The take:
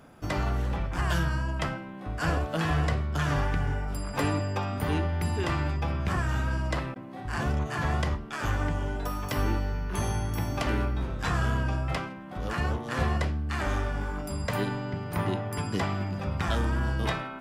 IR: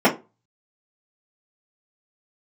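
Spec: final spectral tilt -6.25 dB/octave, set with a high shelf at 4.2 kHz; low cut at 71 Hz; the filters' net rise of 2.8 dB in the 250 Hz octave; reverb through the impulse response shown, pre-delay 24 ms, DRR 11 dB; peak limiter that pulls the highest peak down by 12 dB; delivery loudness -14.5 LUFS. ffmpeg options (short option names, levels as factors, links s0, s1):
-filter_complex "[0:a]highpass=71,equalizer=f=250:t=o:g=4,highshelf=f=4200:g=-6.5,alimiter=level_in=1.33:limit=0.0631:level=0:latency=1,volume=0.75,asplit=2[s0][s1];[1:a]atrim=start_sample=2205,adelay=24[s2];[s1][s2]afir=irnorm=-1:irlink=0,volume=0.0237[s3];[s0][s3]amix=inputs=2:normalize=0,volume=10.6"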